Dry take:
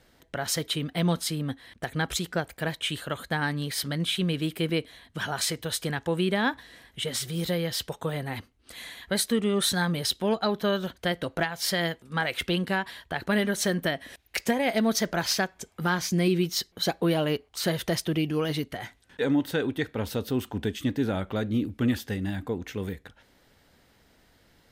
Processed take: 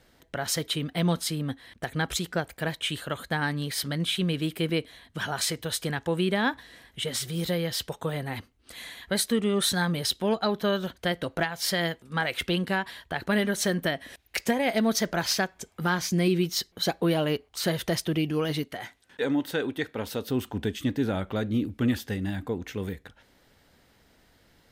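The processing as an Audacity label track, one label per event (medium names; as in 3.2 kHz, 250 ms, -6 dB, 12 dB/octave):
18.630000	20.300000	bass shelf 140 Hz -11 dB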